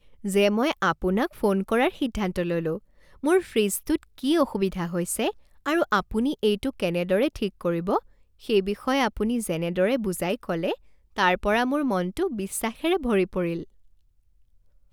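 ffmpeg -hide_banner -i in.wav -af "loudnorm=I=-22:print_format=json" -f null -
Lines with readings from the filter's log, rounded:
"input_i" : "-25.6",
"input_tp" : "-7.6",
"input_lra" : "3.6",
"input_thresh" : "-36.0",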